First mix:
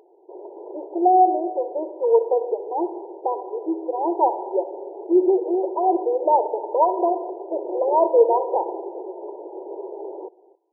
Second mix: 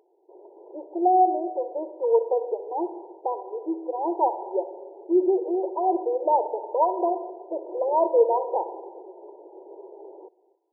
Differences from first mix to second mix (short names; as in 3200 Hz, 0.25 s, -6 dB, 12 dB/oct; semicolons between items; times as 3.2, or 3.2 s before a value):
speech -3.5 dB; background -10.0 dB